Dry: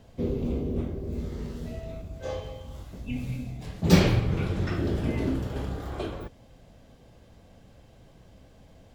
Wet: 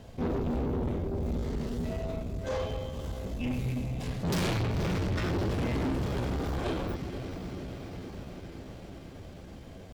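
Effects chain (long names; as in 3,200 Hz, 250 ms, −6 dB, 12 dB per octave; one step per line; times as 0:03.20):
feedback delay with all-pass diffusion 461 ms, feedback 71%, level −14.5 dB
tube saturation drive 33 dB, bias 0.35
tempo change 0.9×
level +6 dB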